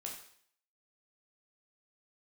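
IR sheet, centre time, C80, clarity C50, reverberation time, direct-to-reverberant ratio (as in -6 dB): 31 ms, 8.5 dB, 5.0 dB, 0.60 s, -1.5 dB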